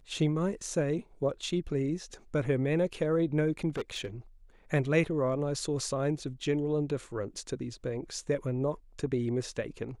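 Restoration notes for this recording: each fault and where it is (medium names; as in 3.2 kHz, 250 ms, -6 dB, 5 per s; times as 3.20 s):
3.76–4.06 s: clipped -29.5 dBFS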